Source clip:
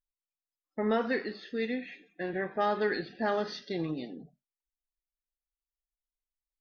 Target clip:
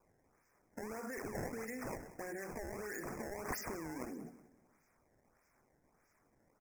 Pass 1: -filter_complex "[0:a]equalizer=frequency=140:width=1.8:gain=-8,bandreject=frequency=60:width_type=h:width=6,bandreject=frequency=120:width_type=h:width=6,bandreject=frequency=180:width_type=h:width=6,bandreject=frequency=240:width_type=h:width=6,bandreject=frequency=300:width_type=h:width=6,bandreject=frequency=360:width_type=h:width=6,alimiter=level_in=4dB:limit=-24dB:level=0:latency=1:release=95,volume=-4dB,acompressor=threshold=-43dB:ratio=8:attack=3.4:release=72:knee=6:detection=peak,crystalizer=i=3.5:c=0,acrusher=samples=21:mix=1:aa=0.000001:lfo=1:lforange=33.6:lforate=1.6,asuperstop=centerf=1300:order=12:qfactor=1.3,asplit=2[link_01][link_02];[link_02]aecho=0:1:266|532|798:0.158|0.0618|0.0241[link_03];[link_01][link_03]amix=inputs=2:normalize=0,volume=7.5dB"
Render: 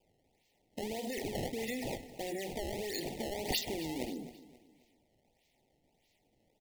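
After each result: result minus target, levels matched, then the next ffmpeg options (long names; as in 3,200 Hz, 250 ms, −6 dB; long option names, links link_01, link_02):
4,000 Hz band +12.0 dB; echo 80 ms late; downward compressor: peak gain reduction −6 dB
-filter_complex "[0:a]equalizer=frequency=140:width=1.8:gain=-8,bandreject=frequency=60:width_type=h:width=6,bandreject=frequency=120:width_type=h:width=6,bandreject=frequency=180:width_type=h:width=6,bandreject=frequency=240:width_type=h:width=6,bandreject=frequency=300:width_type=h:width=6,bandreject=frequency=360:width_type=h:width=6,alimiter=level_in=4dB:limit=-24dB:level=0:latency=1:release=95,volume=-4dB,acompressor=threshold=-43dB:ratio=8:attack=3.4:release=72:knee=6:detection=peak,crystalizer=i=3.5:c=0,acrusher=samples=21:mix=1:aa=0.000001:lfo=1:lforange=33.6:lforate=1.6,asuperstop=centerf=3500:order=12:qfactor=1.3,asplit=2[link_01][link_02];[link_02]aecho=0:1:266|532|798:0.158|0.0618|0.0241[link_03];[link_01][link_03]amix=inputs=2:normalize=0,volume=7.5dB"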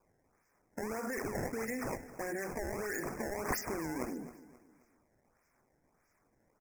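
echo 80 ms late; downward compressor: peak gain reduction −6 dB
-filter_complex "[0:a]equalizer=frequency=140:width=1.8:gain=-8,bandreject=frequency=60:width_type=h:width=6,bandreject=frequency=120:width_type=h:width=6,bandreject=frequency=180:width_type=h:width=6,bandreject=frequency=240:width_type=h:width=6,bandreject=frequency=300:width_type=h:width=6,bandreject=frequency=360:width_type=h:width=6,alimiter=level_in=4dB:limit=-24dB:level=0:latency=1:release=95,volume=-4dB,acompressor=threshold=-43dB:ratio=8:attack=3.4:release=72:knee=6:detection=peak,crystalizer=i=3.5:c=0,acrusher=samples=21:mix=1:aa=0.000001:lfo=1:lforange=33.6:lforate=1.6,asuperstop=centerf=3500:order=12:qfactor=1.3,asplit=2[link_01][link_02];[link_02]aecho=0:1:186|372|558:0.158|0.0618|0.0241[link_03];[link_01][link_03]amix=inputs=2:normalize=0,volume=7.5dB"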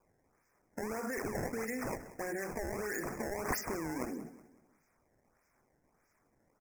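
downward compressor: peak gain reduction −6 dB
-filter_complex "[0:a]equalizer=frequency=140:width=1.8:gain=-8,bandreject=frequency=60:width_type=h:width=6,bandreject=frequency=120:width_type=h:width=6,bandreject=frequency=180:width_type=h:width=6,bandreject=frequency=240:width_type=h:width=6,bandreject=frequency=300:width_type=h:width=6,bandreject=frequency=360:width_type=h:width=6,alimiter=level_in=4dB:limit=-24dB:level=0:latency=1:release=95,volume=-4dB,acompressor=threshold=-50dB:ratio=8:attack=3.4:release=72:knee=6:detection=peak,crystalizer=i=3.5:c=0,acrusher=samples=21:mix=1:aa=0.000001:lfo=1:lforange=33.6:lforate=1.6,asuperstop=centerf=3500:order=12:qfactor=1.3,asplit=2[link_01][link_02];[link_02]aecho=0:1:186|372|558:0.158|0.0618|0.0241[link_03];[link_01][link_03]amix=inputs=2:normalize=0,volume=7.5dB"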